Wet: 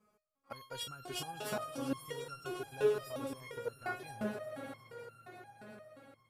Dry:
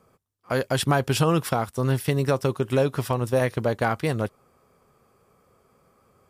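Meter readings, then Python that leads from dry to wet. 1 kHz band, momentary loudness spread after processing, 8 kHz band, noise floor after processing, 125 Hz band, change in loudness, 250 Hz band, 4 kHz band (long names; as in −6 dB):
−15.5 dB, 20 LU, −13.0 dB, −75 dBFS, −26.0 dB, −15.5 dB, −16.0 dB, −11.5 dB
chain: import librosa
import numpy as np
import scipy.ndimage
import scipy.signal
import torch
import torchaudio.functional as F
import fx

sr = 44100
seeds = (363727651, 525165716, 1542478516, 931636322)

y = fx.echo_swell(x, sr, ms=116, loudest=5, wet_db=-14.5)
y = fx.resonator_held(y, sr, hz=5.7, low_hz=210.0, high_hz=1400.0)
y = y * 10.0 ** (1.5 / 20.0)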